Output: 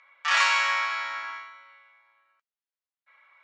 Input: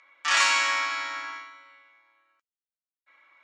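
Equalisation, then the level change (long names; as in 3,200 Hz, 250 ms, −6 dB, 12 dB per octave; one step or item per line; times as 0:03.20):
high-pass filter 600 Hz 12 dB per octave
high-frequency loss of the air 67 metres
high-shelf EQ 4,400 Hz −5.5 dB
+2.0 dB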